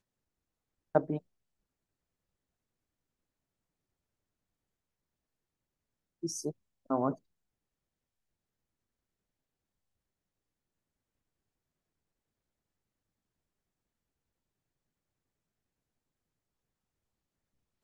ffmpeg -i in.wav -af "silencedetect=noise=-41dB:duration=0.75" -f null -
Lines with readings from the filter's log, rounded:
silence_start: 0.00
silence_end: 0.95 | silence_duration: 0.95
silence_start: 1.18
silence_end: 6.23 | silence_duration: 5.05
silence_start: 7.14
silence_end: 17.84 | silence_duration: 10.69